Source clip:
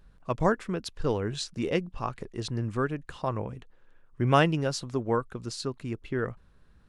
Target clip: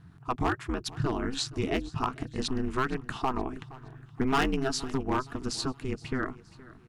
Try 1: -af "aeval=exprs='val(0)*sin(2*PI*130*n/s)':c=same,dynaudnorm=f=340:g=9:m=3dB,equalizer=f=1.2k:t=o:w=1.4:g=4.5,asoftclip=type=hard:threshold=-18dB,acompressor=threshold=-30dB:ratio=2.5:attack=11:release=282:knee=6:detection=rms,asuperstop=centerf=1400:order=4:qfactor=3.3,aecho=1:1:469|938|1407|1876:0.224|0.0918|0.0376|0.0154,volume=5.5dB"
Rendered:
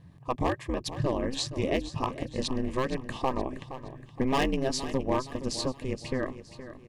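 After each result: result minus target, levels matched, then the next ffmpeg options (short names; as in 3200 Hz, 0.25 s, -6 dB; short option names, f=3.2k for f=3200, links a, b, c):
echo-to-direct +7 dB; 500 Hz band +3.0 dB
-af "aeval=exprs='val(0)*sin(2*PI*130*n/s)':c=same,dynaudnorm=f=340:g=9:m=3dB,equalizer=f=1.2k:t=o:w=1.4:g=4.5,asoftclip=type=hard:threshold=-18dB,acompressor=threshold=-30dB:ratio=2.5:attack=11:release=282:knee=6:detection=rms,asuperstop=centerf=1400:order=4:qfactor=3.3,aecho=1:1:469|938|1407:0.1|0.041|0.0168,volume=5.5dB"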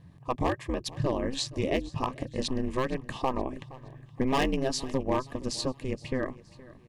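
500 Hz band +3.0 dB
-af "aeval=exprs='val(0)*sin(2*PI*130*n/s)':c=same,dynaudnorm=f=340:g=9:m=3dB,equalizer=f=1.2k:t=o:w=1.4:g=4.5,asoftclip=type=hard:threshold=-18dB,acompressor=threshold=-30dB:ratio=2.5:attack=11:release=282:knee=6:detection=rms,asuperstop=centerf=550:order=4:qfactor=3.3,aecho=1:1:469|938|1407:0.1|0.041|0.0168,volume=5.5dB"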